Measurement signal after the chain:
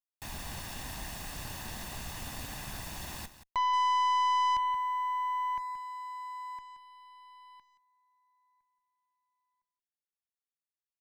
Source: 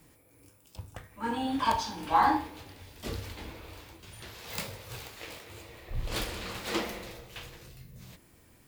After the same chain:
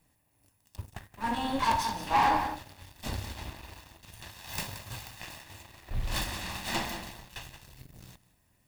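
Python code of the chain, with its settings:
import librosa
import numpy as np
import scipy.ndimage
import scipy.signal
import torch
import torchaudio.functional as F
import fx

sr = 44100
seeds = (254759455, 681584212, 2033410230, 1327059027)

y = fx.lower_of_two(x, sr, delay_ms=1.1)
y = y + 10.0 ** (-11.0 / 20.0) * np.pad(y, (int(176 * sr / 1000.0), 0))[:len(y)]
y = fx.leveller(y, sr, passes=2)
y = y * 10.0 ** (-5.0 / 20.0)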